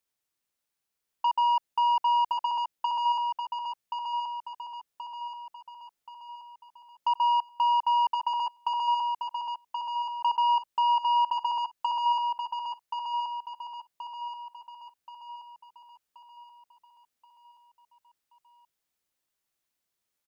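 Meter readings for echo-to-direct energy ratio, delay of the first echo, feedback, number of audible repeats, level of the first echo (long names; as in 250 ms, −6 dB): −4.5 dB, 1,078 ms, 48%, 5, −5.5 dB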